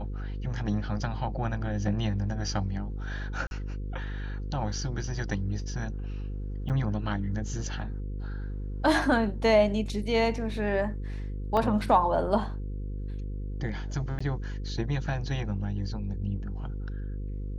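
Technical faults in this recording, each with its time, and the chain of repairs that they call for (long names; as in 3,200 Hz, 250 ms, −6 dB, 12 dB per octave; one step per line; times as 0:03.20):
mains buzz 50 Hz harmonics 10 −34 dBFS
0:03.47–0:03.51: drop-out 41 ms
0:06.69–0:06.70: drop-out 8.2 ms
0:11.57: drop-out 2.4 ms
0:14.19–0:14.21: drop-out 15 ms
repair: hum removal 50 Hz, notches 10
repair the gap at 0:03.47, 41 ms
repair the gap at 0:06.69, 8.2 ms
repair the gap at 0:11.57, 2.4 ms
repair the gap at 0:14.19, 15 ms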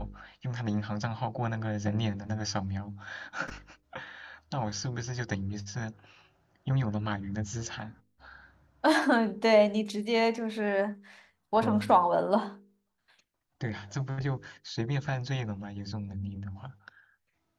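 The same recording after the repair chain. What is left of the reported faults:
none of them is left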